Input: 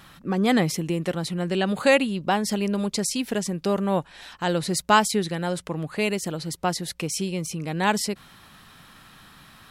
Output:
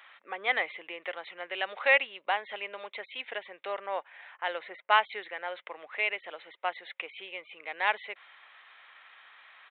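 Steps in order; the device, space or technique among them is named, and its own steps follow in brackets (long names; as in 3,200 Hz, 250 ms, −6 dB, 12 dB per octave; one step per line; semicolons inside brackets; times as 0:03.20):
musical greeting card (downsampling to 8,000 Hz; high-pass filter 560 Hz 24 dB per octave; parametric band 2,100 Hz +10.5 dB 0.47 octaves)
0:03.86–0:05.48: low-pass that shuts in the quiet parts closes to 1,600 Hz, open at −14 dBFS
level −6 dB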